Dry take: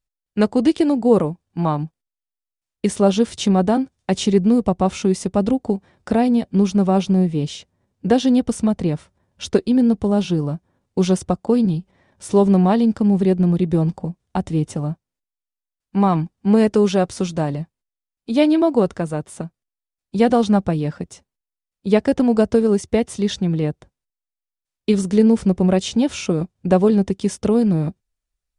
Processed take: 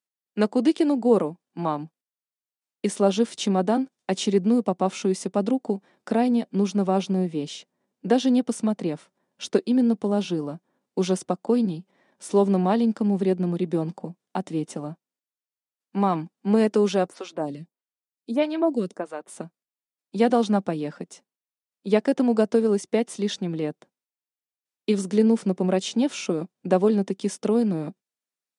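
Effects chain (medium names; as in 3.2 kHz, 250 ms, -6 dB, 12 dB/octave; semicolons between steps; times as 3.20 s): high-pass 200 Hz 24 dB/octave; 17.07–19.28 s: lamp-driven phase shifter 1.6 Hz; trim -4 dB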